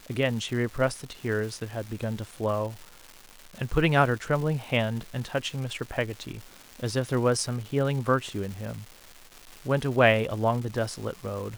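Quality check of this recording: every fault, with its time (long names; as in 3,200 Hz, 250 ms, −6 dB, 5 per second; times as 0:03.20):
surface crackle 570 per second −36 dBFS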